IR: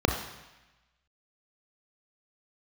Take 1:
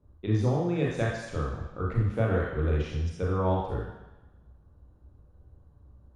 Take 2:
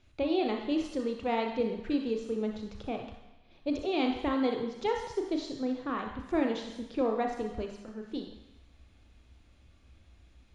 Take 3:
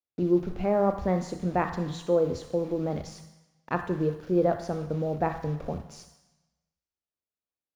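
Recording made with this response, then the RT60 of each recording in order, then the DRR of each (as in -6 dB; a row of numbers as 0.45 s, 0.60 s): 2; 1.0 s, 1.0 s, 1.0 s; -3.5 dB, 2.5 dB, 7.5 dB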